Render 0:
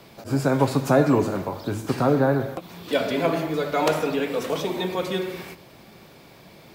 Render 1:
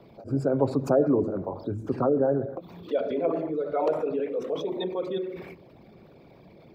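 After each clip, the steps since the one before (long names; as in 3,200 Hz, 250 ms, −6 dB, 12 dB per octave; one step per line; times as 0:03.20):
spectral envelope exaggerated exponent 2
level −3.5 dB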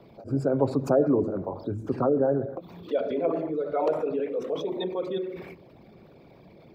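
no processing that can be heard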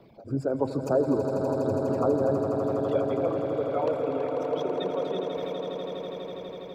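reverb reduction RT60 1.6 s
echo that builds up and dies away 82 ms, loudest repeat 8, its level −9.5 dB
level −2 dB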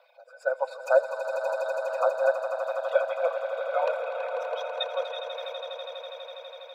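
linear-phase brick-wall high-pass 480 Hz
hollow resonant body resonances 1,500/2,500/3,700 Hz, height 18 dB, ringing for 60 ms
expander for the loud parts 1.5 to 1, over −36 dBFS
level +5.5 dB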